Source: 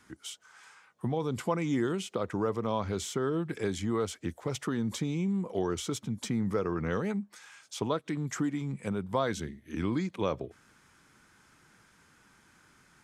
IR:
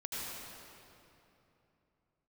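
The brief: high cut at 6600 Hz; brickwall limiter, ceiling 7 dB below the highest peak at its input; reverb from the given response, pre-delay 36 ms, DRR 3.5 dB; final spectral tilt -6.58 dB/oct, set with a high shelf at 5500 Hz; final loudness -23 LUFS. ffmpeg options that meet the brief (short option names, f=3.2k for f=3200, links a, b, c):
-filter_complex "[0:a]lowpass=6.6k,highshelf=f=5.5k:g=-8,alimiter=limit=-23dB:level=0:latency=1,asplit=2[a][b];[1:a]atrim=start_sample=2205,adelay=36[c];[b][c]afir=irnorm=-1:irlink=0,volume=-6dB[d];[a][d]amix=inputs=2:normalize=0,volume=9.5dB"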